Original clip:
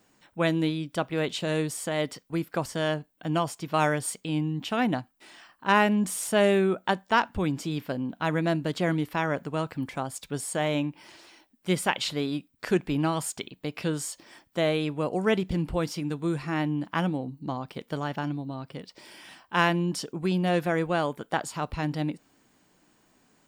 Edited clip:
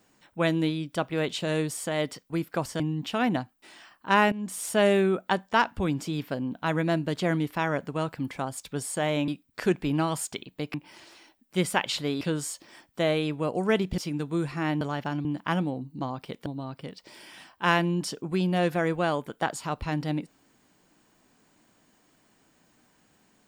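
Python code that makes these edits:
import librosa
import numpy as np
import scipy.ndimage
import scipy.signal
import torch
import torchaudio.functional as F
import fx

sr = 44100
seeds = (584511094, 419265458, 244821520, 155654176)

y = fx.edit(x, sr, fx.cut(start_s=2.8, length_s=1.58),
    fx.fade_in_from(start_s=5.9, length_s=0.41, floor_db=-15.0),
    fx.move(start_s=12.33, length_s=1.46, to_s=10.86),
    fx.cut(start_s=15.56, length_s=0.33),
    fx.move(start_s=17.93, length_s=0.44, to_s=16.72), tone=tone)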